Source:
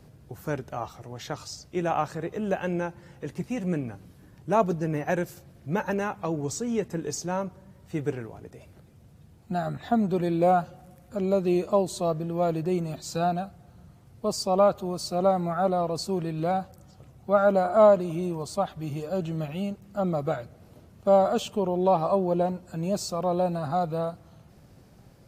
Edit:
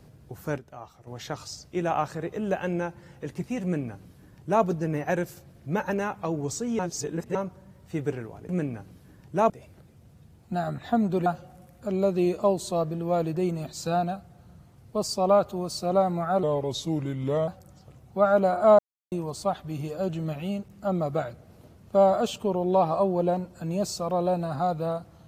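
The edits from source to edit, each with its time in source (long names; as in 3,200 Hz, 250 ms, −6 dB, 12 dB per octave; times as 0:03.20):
0:00.58–0:01.07: clip gain −9.5 dB
0:03.63–0:04.64: duplicate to 0:08.49
0:06.79–0:07.35: reverse
0:10.25–0:10.55: remove
0:15.72–0:16.60: play speed 84%
0:17.91–0:18.24: silence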